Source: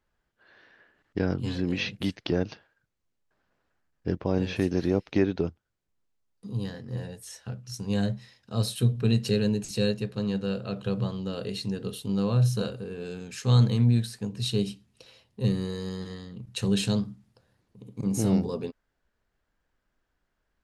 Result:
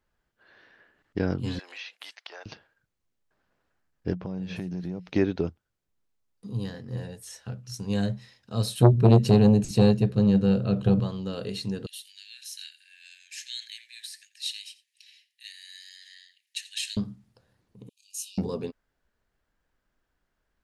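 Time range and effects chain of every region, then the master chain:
1.59–2.46 HPF 760 Hz 24 dB/oct + compressor 3:1, threshold -39 dBFS
4.13–5.12 bell 180 Hz +14.5 dB 0.25 oct + compressor 5:1, threshold -31 dBFS
8.8–11 low shelf 400 Hz +12 dB + core saturation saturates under 460 Hz
11.86–16.97 steep high-pass 1700 Hz 96 dB/oct + echo 87 ms -18.5 dB
17.89–18.38 brick-wall FIR high-pass 2400 Hz + doubler 21 ms -8 dB
whole clip: dry

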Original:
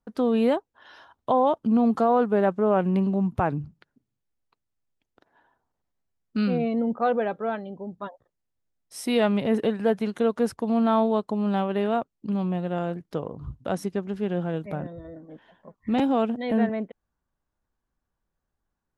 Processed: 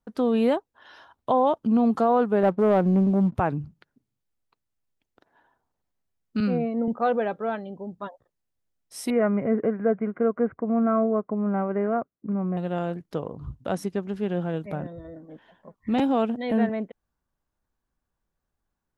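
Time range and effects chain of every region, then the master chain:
2.43–3.35 LPF 1100 Hz + sample leveller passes 1
6.4–6.88 LPF 8800 Hz 24 dB/oct + bell 3400 Hz -11 dB 0.53 oct + three-band expander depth 100%
9.1–12.57 steep low-pass 2100 Hz 48 dB/oct + notch comb 890 Hz
whole clip: dry

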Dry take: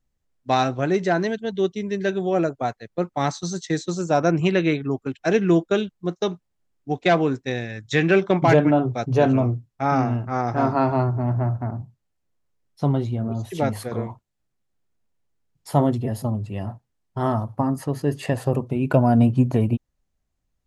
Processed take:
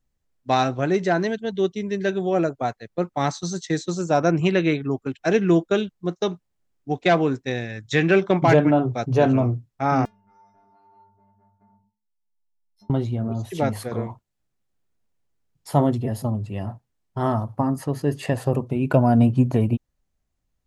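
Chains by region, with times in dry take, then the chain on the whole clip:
10.05–12.9 robotiser 99.3 Hz + compressor 12:1, threshold -36 dBFS + metallic resonator 210 Hz, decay 0.33 s, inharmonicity 0.008
whole clip: dry

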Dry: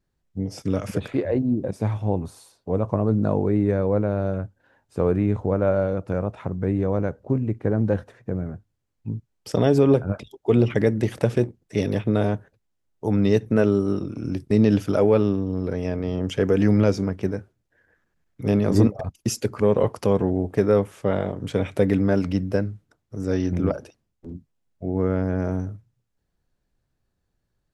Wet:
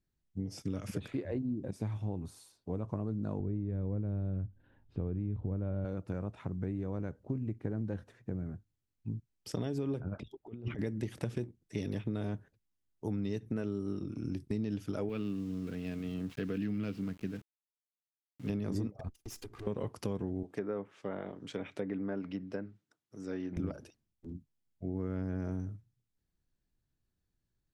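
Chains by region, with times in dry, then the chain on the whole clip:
3.4–5.85 synth low-pass 3400 Hz, resonance Q 2.3 + tilt -4 dB/oct + compressor 1.5:1, threshold -35 dBFS
10–10.79 LPF 1200 Hz 6 dB/oct + low shelf 430 Hz -2.5 dB + negative-ratio compressor -27 dBFS, ratio -0.5
15.09–18.5 median filter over 15 samples + speaker cabinet 140–5000 Hz, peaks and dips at 370 Hz -7 dB, 560 Hz -8 dB, 880 Hz -9 dB, 2700 Hz +9 dB + sample gate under -43.5 dBFS
19.08–19.67 minimum comb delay 2.5 ms + compressor 3:1, threshold -36 dBFS
20.43–23.57 HPF 140 Hz + treble ducked by the level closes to 1600 Hz, closed at -18 dBFS + low shelf 260 Hz -11 dB
whole clip: EQ curve 330 Hz 0 dB, 520 Hz -7 dB, 3600 Hz 0 dB; compressor, threshold -24 dBFS; gain -7.5 dB

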